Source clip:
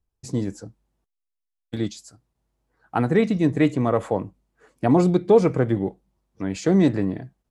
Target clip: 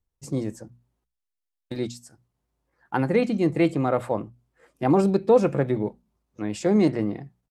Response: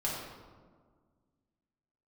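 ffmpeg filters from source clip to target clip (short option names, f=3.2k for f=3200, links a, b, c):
-af "asetrate=48091,aresample=44100,atempo=0.917004,bandreject=f=60:t=h:w=6,bandreject=f=120:t=h:w=6,bandreject=f=180:t=h:w=6,bandreject=f=240:t=h:w=6,volume=-2dB"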